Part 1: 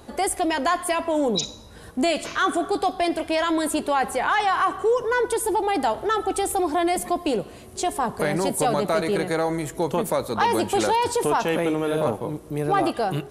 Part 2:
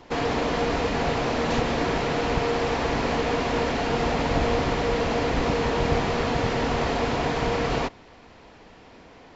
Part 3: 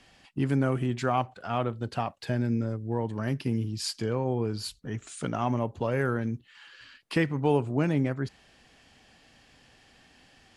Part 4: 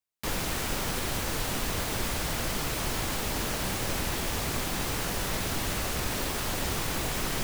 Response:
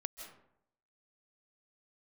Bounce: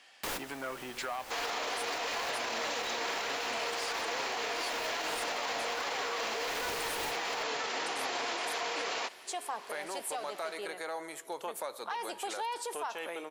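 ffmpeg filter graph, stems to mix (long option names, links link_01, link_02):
-filter_complex "[0:a]dynaudnorm=framelen=850:gausssize=7:maxgain=3dB,adelay=1500,volume=-9.5dB[link_01];[1:a]highpass=frequency=1100:poles=1,aemphasis=mode=production:type=50fm,adelay=1200,volume=0dB[link_02];[2:a]asoftclip=type=tanh:threshold=-20.5dB,volume=2.5dB,asplit=2[link_03][link_04];[3:a]volume=1dB[link_05];[link_04]apad=whole_len=327699[link_06];[link_05][link_06]sidechaincompress=threshold=-45dB:ratio=4:attack=16:release=270[link_07];[link_01][link_03]amix=inputs=2:normalize=0,highpass=frequency=880:poles=1,acompressor=threshold=-32dB:ratio=6,volume=0dB[link_08];[link_02][link_07][link_08]amix=inputs=3:normalize=0,bass=frequency=250:gain=-15,treble=frequency=4000:gain=-2,alimiter=level_in=2dB:limit=-24dB:level=0:latency=1:release=49,volume=-2dB"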